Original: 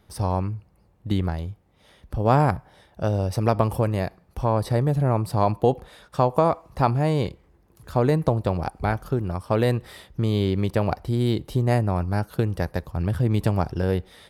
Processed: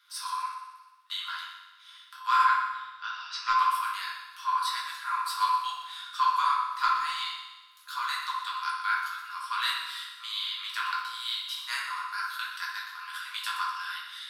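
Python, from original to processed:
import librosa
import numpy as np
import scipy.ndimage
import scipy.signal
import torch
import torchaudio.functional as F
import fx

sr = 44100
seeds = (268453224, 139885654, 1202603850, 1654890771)

p1 = fx.lowpass(x, sr, hz=fx.line((2.42, 3500.0), (3.52, 5700.0)), slope=24, at=(2.42, 3.52), fade=0.02)
p2 = fx.level_steps(p1, sr, step_db=10)
p3 = p1 + (p2 * librosa.db_to_amplitude(0.5))
p4 = scipy.signal.sosfilt(scipy.signal.cheby1(6, 9, 1000.0, 'highpass', fs=sr, output='sos'), p3)
p5 = 10.0 ** (-17.0 / 20.0) * np.tanh(p4 / 10.0 ** (-17.0 / 20.0))
p6 = p5 + fx.echo_heads(p5, sr, ms=61, heads='first and second', feedback_pct=58, wet_db=-12.5, dry=0)
y = fx.room_shoebox(p6, sr, seeds[0], volume_m3=95.0, walls='mixed', distance_m=1.3)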